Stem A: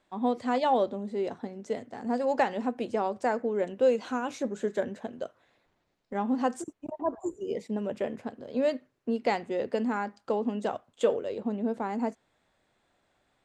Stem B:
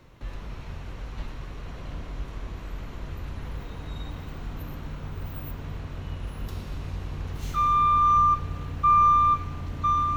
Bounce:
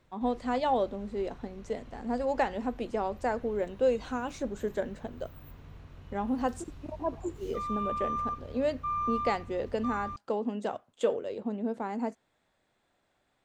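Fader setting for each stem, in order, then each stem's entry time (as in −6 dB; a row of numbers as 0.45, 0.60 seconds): −2.5, −13.5 decibels; 0.00, 0.00 seconds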